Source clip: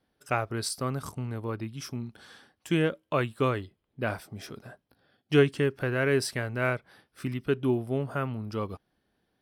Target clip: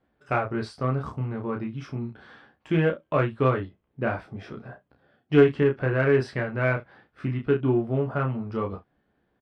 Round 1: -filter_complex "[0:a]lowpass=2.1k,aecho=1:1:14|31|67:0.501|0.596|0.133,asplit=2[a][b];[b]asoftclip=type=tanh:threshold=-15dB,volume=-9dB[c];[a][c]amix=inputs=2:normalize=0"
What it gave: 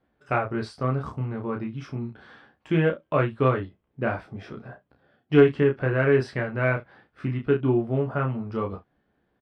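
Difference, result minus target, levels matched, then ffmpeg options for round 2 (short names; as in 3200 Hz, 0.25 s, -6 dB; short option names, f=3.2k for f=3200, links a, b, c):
soft clip: distortion -6 dB
-filter_complex "[0:a]lowpass=2.1k,aecho=1:1:14|31|67:0.501|0.596|0.133,asplit=2[a][b];[b]asoftclip=type=tanh:threshold=-22.5dB,volume=-9dB[c];[a][c]amix=inputs=2:normalize=0"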